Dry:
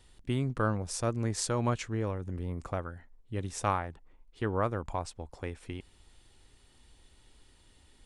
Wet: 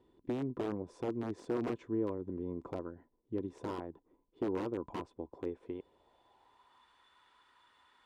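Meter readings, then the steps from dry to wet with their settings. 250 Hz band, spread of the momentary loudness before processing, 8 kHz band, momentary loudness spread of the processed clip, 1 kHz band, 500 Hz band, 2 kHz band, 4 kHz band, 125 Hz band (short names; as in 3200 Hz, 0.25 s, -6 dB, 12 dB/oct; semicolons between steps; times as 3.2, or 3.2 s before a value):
-1.0 dB, 13 LU, under -25 dB, 11 LU, -11.0 dB, -3.0 dB, -12.5 dB, -14.0 dB, -13.0 dB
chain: compressor 1.5:1, threshold -35 dBFS, peak gain reduction 5 dB; small resonant body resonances 1000/3500 Hz, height 14 dB, ringing for 60 ms; wrapped overs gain 25 dB; band-pass sweep 340 Hz -> 1300 Hz, 5.43–6.94; gain +7 dB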